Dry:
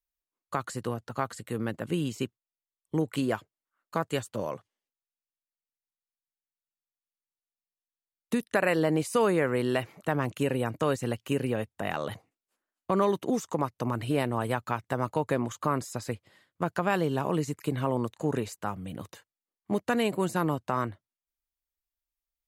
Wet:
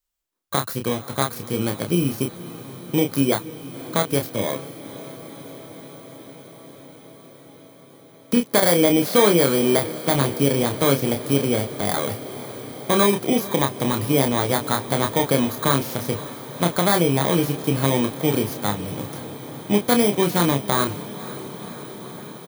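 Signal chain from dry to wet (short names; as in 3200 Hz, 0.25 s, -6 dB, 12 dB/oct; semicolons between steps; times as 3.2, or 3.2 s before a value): FFT order left unsorted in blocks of 16 samples; doubler 29 ms -5.5 dB; diffused feedback echo 0.518 s, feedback 79%, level -16 dB; gain +7.5 dB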